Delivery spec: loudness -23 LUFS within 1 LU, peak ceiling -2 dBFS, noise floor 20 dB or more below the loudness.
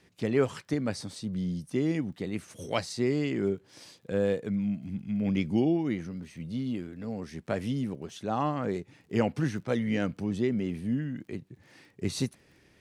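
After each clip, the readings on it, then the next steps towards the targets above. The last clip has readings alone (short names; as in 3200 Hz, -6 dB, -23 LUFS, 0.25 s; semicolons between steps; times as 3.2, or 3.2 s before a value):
ticks 24/s; loudness -31.0 LUFS; peak -13.0 dBFS; loudness target -23.0 LUFS
-> de-click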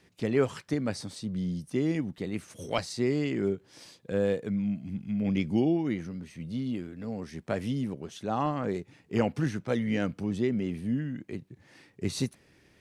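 ticks 0/s; loudness -31.0 LUFS; peak -13.0 dBFS; loudness target -23.0 LUFS
-> gain +8 dB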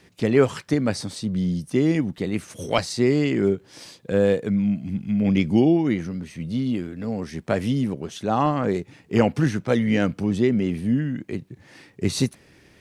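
loudness -23.0 LUFS; peak -5.0 dBFS; noise floor -55 dBFS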